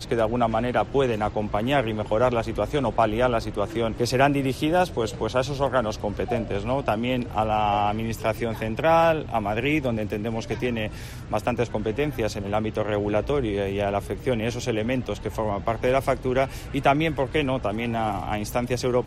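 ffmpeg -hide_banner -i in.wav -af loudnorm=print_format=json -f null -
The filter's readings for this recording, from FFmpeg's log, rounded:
"input_i" : "-24.8",
"input_tp" : "-6.7",
"input_lra" : "2.2",
"input_thresh" : "-34.8",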